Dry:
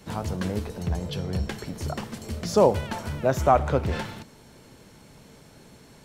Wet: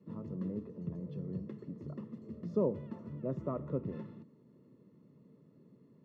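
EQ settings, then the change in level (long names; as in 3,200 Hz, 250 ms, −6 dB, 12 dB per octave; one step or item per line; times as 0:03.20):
moving average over 57 samples
high-pass filter 140 Hz 24 dB per octave
high-frequency loss of the air 56 metres
−6.0 dB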